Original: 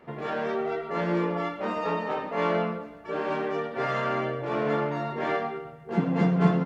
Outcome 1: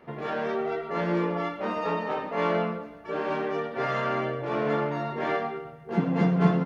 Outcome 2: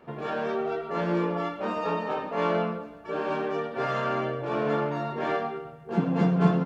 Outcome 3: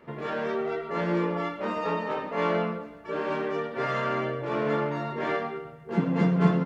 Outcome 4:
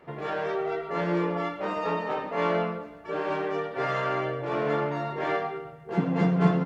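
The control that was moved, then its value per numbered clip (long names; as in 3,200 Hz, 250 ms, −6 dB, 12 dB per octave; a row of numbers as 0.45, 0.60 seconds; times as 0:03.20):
notch filter, centre frequency: 7,500, 2,000, 740, 230 Hertz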